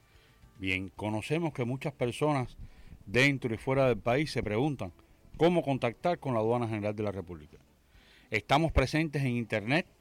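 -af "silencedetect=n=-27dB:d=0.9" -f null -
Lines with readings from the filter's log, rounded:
silence_start: 7.20
silence_end: 8.33 | silence_duration: 1.12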